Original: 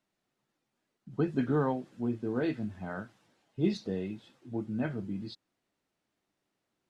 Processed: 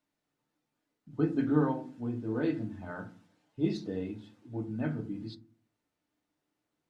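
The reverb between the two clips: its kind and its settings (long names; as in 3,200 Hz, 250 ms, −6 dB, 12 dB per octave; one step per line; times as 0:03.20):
feedback delay network reverb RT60 0.39 s, low-frequency decay 1.6×, high-frequency decay 0.35×, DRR 4 dB
level −3.5 dB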